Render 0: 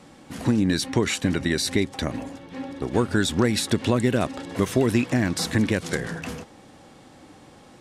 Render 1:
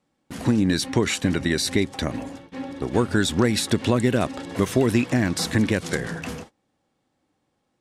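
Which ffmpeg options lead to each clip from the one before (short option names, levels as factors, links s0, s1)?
-af "agate=range=0.0562:threshold=0.00891:ratio=16:detection=peak,volume=1.12"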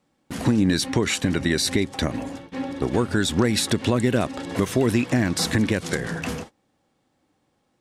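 -af "alimiter=limit=0.237:level=0:latency=1:release=306,volume=1.5"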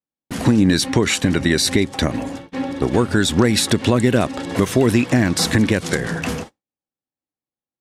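-af "agate=range=0.0224:threshold=0.0158:ratio=3:detection=peak,volume=1.78"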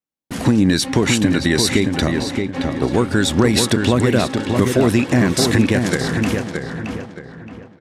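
-filter_complex "[0:a]asplit=2[s0][s1];[s1]adelay=622,lowpass=f=2800:p=1,volume=0.596,asplit=2[s2][s3];[s3]adelay=622,lowpass=f=2800:p=1,volume=0.36,asplit=2[s4][s5];[s5]adelay=622,lowpass=f=2800:p=1,volume=0.36,asplit=2[s6][s7];[s7]adelay=622,lowpass=f=2800:p=1,volume=0.36,asplit=2[s8][s9];[s9]adelay=622,lowpass=f=2800:p=1,volume=0.36[s10];[s0][s2][s4][s6][s8][s10]amix=inputs=6:normalize=0"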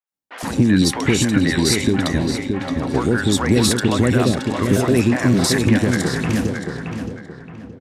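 -filter_complex "[0:a]acrossover=split=560|3000[s0][s1][s2];[s2]adelay=70[s3];[s0]adelay=120[s4];[s4][s1][s3]amix=inputs=3:normalize=0"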